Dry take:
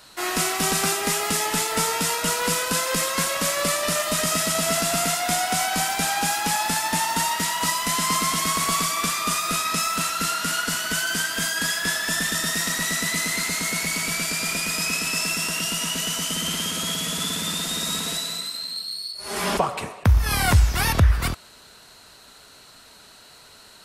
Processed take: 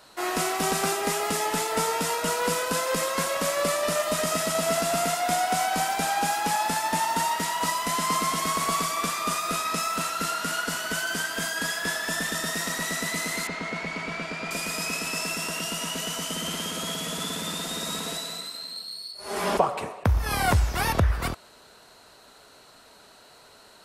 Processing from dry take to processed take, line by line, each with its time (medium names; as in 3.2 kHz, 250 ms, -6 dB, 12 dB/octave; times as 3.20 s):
13.47–14.51 s: low-pass 3 kHz
whole clip: peaking EQ 580 Hz +8 dB 2.5 oct; trim -6.5 dB